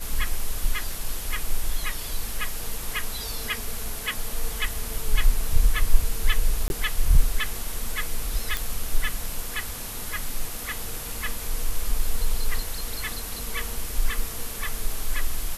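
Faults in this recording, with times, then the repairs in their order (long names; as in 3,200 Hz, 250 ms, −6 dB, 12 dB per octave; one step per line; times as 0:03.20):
0:06.68–0:06.70: drop-out 21 ms
0:08.57: click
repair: click removal
repair the gap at 0:06.68, 21 ms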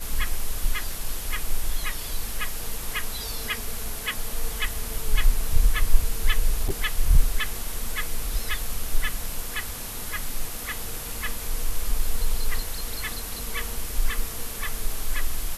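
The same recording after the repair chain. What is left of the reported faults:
none of them is left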